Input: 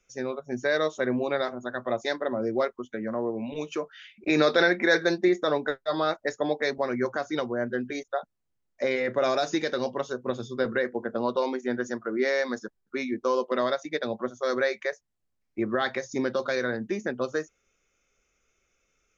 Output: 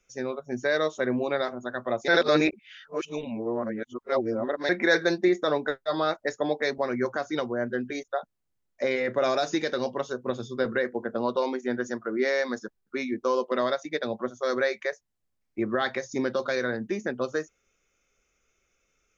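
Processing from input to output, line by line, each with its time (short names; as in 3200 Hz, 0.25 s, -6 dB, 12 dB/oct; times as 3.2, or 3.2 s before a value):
2.08–4.69 reverse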